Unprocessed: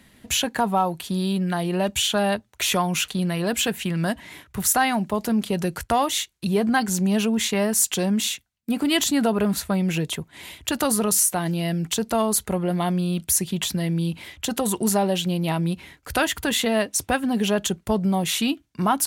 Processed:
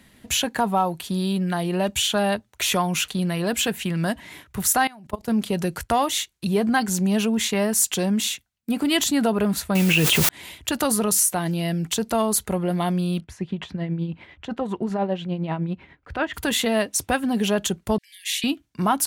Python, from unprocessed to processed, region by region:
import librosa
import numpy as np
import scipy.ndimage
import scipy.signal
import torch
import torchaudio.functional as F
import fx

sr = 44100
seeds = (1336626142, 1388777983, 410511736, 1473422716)

y = fx.chain(x, sr, fx.highpass(hz=46.0, slope=12),
    fx.low_shelf_res(hz=140.0, db=8.5, q=1.5),
    fx.level_steps(step_db=22), at=(4.87, 5.28))
y = fx.chain(y, sr, fx.peak_eq(hz=2700.0, db=12.0, octaves=0.51),
    fx.quant_dither(seeds[0], bits=6, dither='triangular'),
    fx.env_flatten(amount_pct=100), at=(9.75, 10.29))
y = fx.chain(y, sr, fx.lowpass(hz=2100.0, slope=12),
    fx.tremolo_shape(shape='triangle', hz=10.0, depth_pct=60), at=(13.2, 16.34))
y = fx.chain(y, sr, fx.brickwall_highpass(low_hz=1600.0),
    fx.high_shelf(hz=10000.0, db=-5.0), at=(17.98, 18.44))